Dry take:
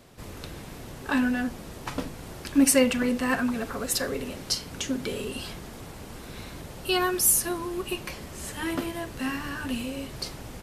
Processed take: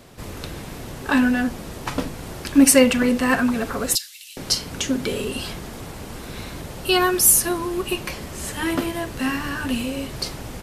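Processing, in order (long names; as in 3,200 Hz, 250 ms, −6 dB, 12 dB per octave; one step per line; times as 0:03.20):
0:03.95–0:04.37: inverse Chebyshev high-pass filter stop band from 530 Hz, stop band 80 dB
level +6.5 dB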